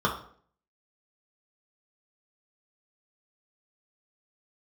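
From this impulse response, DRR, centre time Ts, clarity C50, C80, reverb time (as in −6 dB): −3.0 dB, 22 ms, 8.0 dB, 12.0 dB, 0.55 s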